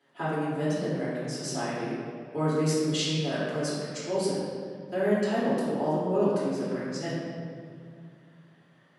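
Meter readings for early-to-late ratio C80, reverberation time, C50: 0.0 dB, 2.2 s, -2.0 dB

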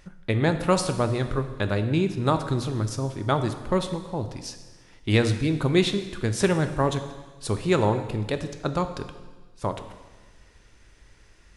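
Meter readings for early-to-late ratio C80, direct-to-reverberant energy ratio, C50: 11.5 dB, 8.0 dB, 10.0 dB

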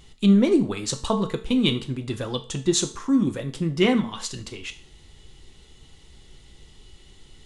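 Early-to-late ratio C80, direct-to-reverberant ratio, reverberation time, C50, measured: 18.0 dB, 6.5 dB, 0.45 s, 13.5 dB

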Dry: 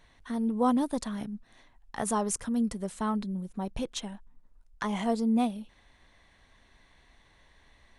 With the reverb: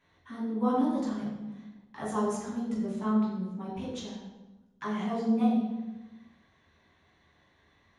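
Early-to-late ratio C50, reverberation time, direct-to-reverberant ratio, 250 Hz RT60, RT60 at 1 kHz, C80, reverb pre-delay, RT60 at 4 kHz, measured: 1.5 dB, 1.1 s, -7.0 dB, 1.5 s, 1.0 s, 4.5 dB, 3 ms, 0.80 s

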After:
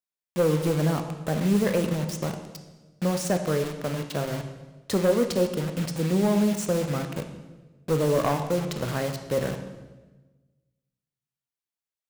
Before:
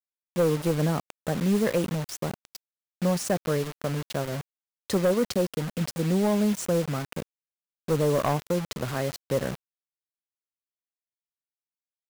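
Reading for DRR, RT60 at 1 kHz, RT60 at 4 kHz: 6.0 dB, 1.1 s, 1.1 s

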